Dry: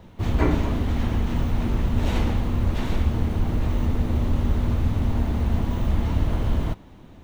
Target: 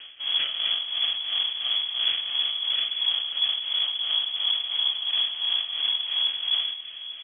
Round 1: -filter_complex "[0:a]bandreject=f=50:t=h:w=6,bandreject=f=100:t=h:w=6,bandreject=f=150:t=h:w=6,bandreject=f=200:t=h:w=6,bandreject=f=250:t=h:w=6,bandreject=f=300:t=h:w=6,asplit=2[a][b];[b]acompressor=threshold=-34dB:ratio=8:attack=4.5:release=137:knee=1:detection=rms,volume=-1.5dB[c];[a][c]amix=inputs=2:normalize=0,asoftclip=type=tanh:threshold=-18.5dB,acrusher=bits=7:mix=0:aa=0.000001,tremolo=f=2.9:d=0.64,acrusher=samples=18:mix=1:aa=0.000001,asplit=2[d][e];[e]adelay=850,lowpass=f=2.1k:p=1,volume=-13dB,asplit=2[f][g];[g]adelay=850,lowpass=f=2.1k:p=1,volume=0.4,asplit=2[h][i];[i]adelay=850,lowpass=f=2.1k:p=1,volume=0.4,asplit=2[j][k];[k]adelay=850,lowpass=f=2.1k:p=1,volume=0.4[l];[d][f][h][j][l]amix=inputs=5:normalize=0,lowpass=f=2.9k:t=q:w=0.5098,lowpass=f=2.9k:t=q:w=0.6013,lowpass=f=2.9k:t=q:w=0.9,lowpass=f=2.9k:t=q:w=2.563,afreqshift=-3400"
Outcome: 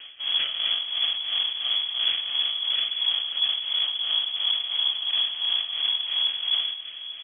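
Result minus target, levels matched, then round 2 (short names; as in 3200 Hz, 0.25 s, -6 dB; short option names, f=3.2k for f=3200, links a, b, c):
compressor: peak gain reduction -9 dB
-filter_complex "[0:a]bandreject=f=50:t=h:w=6,bandreject=f=100:t=h:w=6,bandreject=f=150:t=h:w=6,bandreject=f=200:t=h:w=6,bandreject=f=250:t=h:w=6,bandreject=f=300:t=h:w=6,asplit=2[a][b];[b]acompressor=threshold=-44.5dB:ratio=8:attack=4.5:release=137:knee=1:detection=rms,volume=-1.5dB[c];[a][c]amix=inputs=2:normalize=0,asoftclip=type=tanh:threshold=-18.5dB,acrusher=bits=7:mix=0:aa=0.000001,tremolo=f=2.9:d=0.64,acrusher=samples=18:mix=1:aa=0.000001,asplit=2[d][e];[e]adelay=850,lowpass=f=2.1k:p=1,volume=-13dB,asplit=2[f][g];[g]adelay=850,lowpass=f=2.1k:p=1,volume=0.4,asplit=2[h][i];[i]adelay=850,lowpass=f=2.1k:p=1,volume=0.4,asplit=2[j][k];[k]adelay=850,lowpass=f=2.1k:p=1,volume=0.4[l];[d][f][h][j][l]amix=inputs=5:normalize=0,lowpass=f=2.9k:t=q:w=0.5098,lowpass=f=2.9k:t=q:w=0.6013,lowpass=f=2.9k:t=q:w=0.9,lowpass=f=2.9k:t=q:w=2.563,afreqshift=-3400"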